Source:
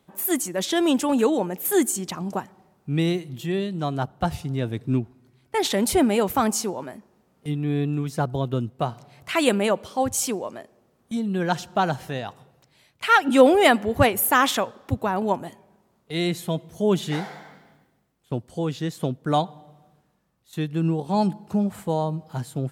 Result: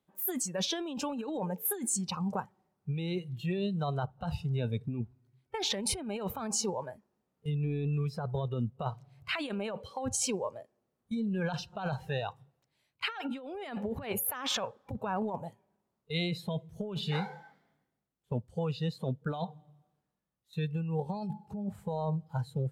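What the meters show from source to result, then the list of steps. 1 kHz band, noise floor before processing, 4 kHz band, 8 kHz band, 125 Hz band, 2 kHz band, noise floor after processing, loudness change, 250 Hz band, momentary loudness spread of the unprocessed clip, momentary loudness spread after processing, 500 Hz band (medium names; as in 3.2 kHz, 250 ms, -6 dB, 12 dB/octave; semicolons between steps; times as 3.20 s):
-14.5 dB, -66 dBFS, -7.0 dB, -6.5 dB, -6.0 dB, -14.0 dB, -83 dBFS, -11.0 dB, -11.5 dB, 13 LU, 8 LU, -13.5 dB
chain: spectral noise reduction 15 dB; compressor with a negative ratio -27 dBFS, ratio -1; trim -6.5 dB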